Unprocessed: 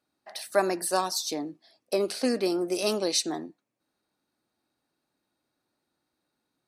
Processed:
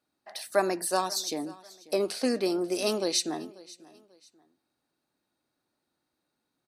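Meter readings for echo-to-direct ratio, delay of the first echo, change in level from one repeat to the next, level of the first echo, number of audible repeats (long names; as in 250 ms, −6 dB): −20.5 dB, 540 ms, −10.0 dB, −21.0 dB, 2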